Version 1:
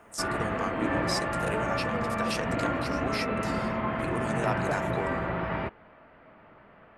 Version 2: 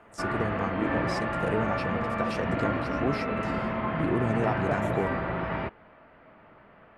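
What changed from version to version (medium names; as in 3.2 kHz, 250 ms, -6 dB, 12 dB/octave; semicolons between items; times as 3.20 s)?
first voice: add tilt EQ -4 dB/octave; second voice: send +7.0 dB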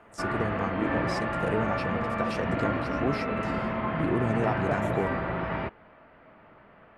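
no change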